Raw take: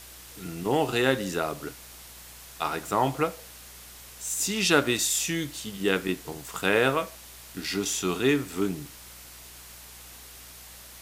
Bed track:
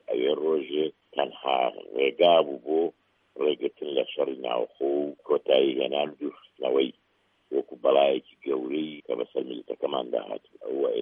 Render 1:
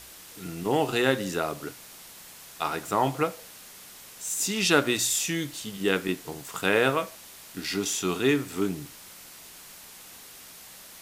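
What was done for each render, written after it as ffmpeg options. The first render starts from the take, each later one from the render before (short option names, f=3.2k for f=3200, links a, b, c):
-af "bandreject=f=60:t=h:w=4,bandreject=f=120:t=h:w=4"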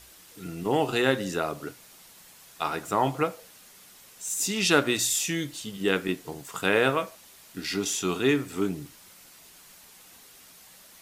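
-af "afftdn=nr=6:nf=-47"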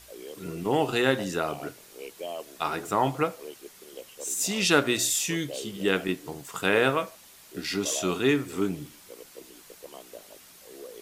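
-filter_complex "[1:a]volume=-17.5dB[a];[0:a][a]amix=inputs=2:normalize=0"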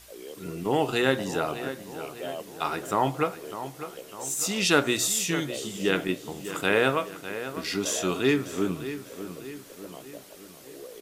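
-filter_complex "[0:a]asplit=2[a][b];[b]adelay=601,lowpass=f=4k:p=1,volume=-11.5dB,asplit=2[c][d];[d]adelay=601,lowpass=f=4k:p=1,volume=0.52,asplit=2[e][f];[f]adelay=601,lowpass=f=4k:p=1,volume=0.52,asplit=2[g][h];[h]adelay=601,lowpass=f=4k:p=1,volume=0.52,asplit=2[i][j];[j]adelay=601,lowpass=f=4k:p=1,volume=0.52,asplit=2[k][l];[l]adelay=601,lowpass=f=4k:p=1,volume=0.52[m];[a][c][e][g][i][k][m]amix=inputs=7:normalize=0"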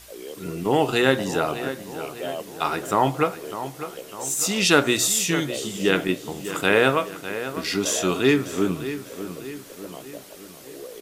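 -af "volume=4.5dB,alimiter=limit=-2dB:level=0:latency=1"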